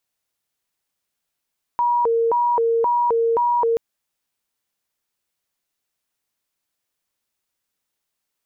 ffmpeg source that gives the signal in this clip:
ffmpeg -f lavfi -i "aevalsrc='0.168*sin(2*PI*(710*t+250/1.9*(0.5-abs(mod(1.9*t,1)-0.5))))':duration=1.98:sample_rate=44100" out.wav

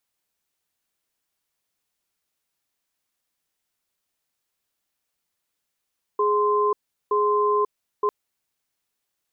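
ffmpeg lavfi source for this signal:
ffmpeg -f lavfi -i "aevalsrc='0.0944*(sin(2*PI*417*t)+sin(2*PI*1040*t))*clip(min(mod(t,0.92),0.54-mod(t,0.92))/0.005,0,1)':duration=1.9:sample_rate=44100" out.wav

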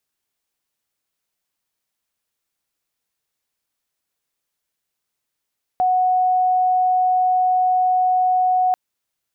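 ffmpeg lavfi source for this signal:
ffmpeg -f lavfi -i "aevalsrc='0.2*sin(2*PI*737*t)':duration=2.94:sample_rate=44100" out.wav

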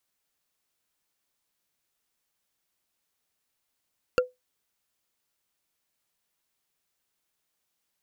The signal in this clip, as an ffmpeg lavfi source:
ffmpeg -f lavfi -i "aevalsrc='0.188*pow(10,-3*t/0.18)*sin(2*PI*502*t)+0.119*pow(10,-3*t/0.053)*sin(2*PI*1384*t)+0.075*pow(10,-3*t/0.024)*sin(2*PI*2712.8*t)+0.0473*pow(10,-3*t/0.013)*sin(2*PI*4484.4*t)+0.0299*pow(10,-3*t/0.008)*sin(2*PI*6696.7*t)':duration=0.45:sample_rate=44100" out.wav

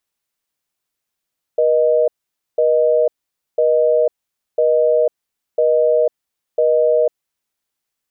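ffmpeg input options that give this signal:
ffmpeg -f lavfi -i "aevalsrc='0.2*(sin(2*PI*480*t)+sin(2*PI*620*t))*clip(min(mod(t,1),0.5-mod(t,1))/0.005,0,1)':duration=5.67:sample_rate=44100" out.wav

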